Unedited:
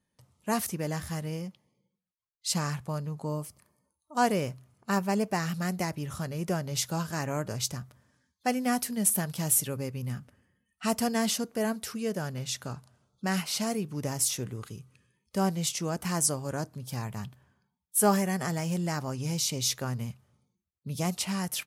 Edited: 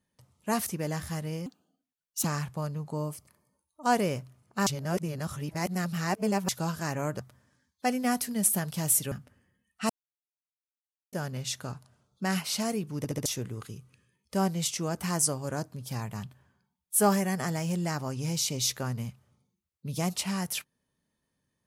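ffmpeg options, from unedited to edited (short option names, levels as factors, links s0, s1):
-filter_complex "[0:a]asplit=13[s0][s1][s2][s3][s4][s5][s6][s7][s8][s9][s10][s11][s12];[s0]atrim=end=1.464[s13];[s1]atrim=start=1.46:end=2.56,asetpts=PTS-STARTPTS,asetrate=61740,aresample=44100[s14];[s2]atrim=start=2.556:end=4.982[s15];[s3]atrim=start=4.978:end=6.802,asetpts=PTS-STARTPTS,areverse[s16];[s4]atrim=start=6.798:end=7.512[s17];[s5]atrim=start=7.808:end=9.732[s18];[s6]atrim=start=10.128:end=10.91,asetpts=PTS-STARTPTS,afade=t=out:st=0.778:d=0.004:c=hsin[s19];[s7]atrim=start=10.91:end=12.14,asetpts=PTS-STARTPTS,volume=0[s20];[s8]atrim=start=12.14:end=14.062,asetpts=PTS-STARTPTS,afade=t=in:d=0.004:c=hsin[s21];[s9]atrim=start=13.988:end=14.062[s22];[s10]atrim=start=13.988:end=14.062[s23];[s11]atrim=start=13.988:end=14.062[s24];[s12]atrim=start=14.268[s25];[s13][s14]acrossfade=d=0.004:c1=hsin:c2=hsin[s26];[s26][s15]acrossfade=d=0.004:c1=hsin:c2=hsin[s27];[s27][s16]acrossfade=d=0.004:c1=hsin:c2=hsin[s28];[s28][s17]acrossfade=d=0.004:c1=hsin:c2=hsin[s29];[s29][s18]acrossfade=d=0.004:c1=hsin:c2=hsin[s30];[s19][s20][s21]concat=n=3:v=0:a=1[s31];[s30][s31]acrossfade=d=0.004:c1=hsin:c2=hsin[s32];[s32][s22]acrossfade=d=0.004:c1=hsin:c2=hsin[s33];[s33][s23]acrossfade=d=0.004:c1=hsin:c2=hsin[s34];[s34][s24]acrossfade=d=0.004:c1=hsin:c2=hsin[s35];[s35][s25]acrossfade=d=0.004:c1=hsin:c2=hsin"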